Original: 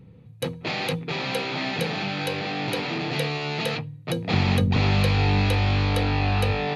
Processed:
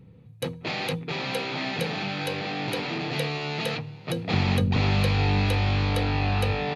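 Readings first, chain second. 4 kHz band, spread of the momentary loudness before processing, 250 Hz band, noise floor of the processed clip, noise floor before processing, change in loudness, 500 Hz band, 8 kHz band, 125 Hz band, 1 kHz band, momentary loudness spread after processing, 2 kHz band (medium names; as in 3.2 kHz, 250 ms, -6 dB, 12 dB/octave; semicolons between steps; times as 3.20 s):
-2.0 dB, 8 LU, -2.0 dB, -49 dBFS, -47 dBFS, -2.0 dB, -2.0 dB, -2.0 dB, -2.0 dB, -2.0 dB, 8 LU, -2.0 dB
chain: frequency-shifting echo 457 ms, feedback 59%, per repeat +34 Hz, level -22 dB; trim -2 dB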